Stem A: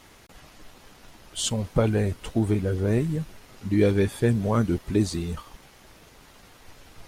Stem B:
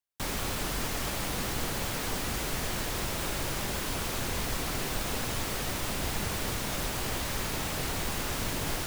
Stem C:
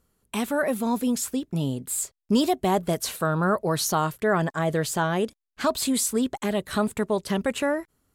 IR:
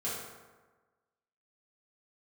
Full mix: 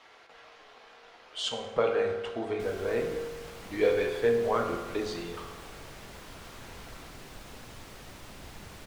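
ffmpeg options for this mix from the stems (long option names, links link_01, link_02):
-filter_complex "[0:a]acrossover=split=430 5100:gain=0.0708 1 0.126[link_01][link_02][link_03];[link_01][link_02][link_03]amix=inputs=3:normalize=0,volume=-3.5dB,asplit=2[link_04][link_05];[link_05]volume=-3.5dB[link_06];[1:a]adelay=2400,volume=-13.5dB[link_07];[3:a]atrim=start_sample=2205[link_08];[link_06][link_08]afir=irnorm=-1:irlink=0[link_09];[link_04][link_07][link_09]amix=inputs=3:normalize=0,highshelf=frequency=8500:gain=-8.5"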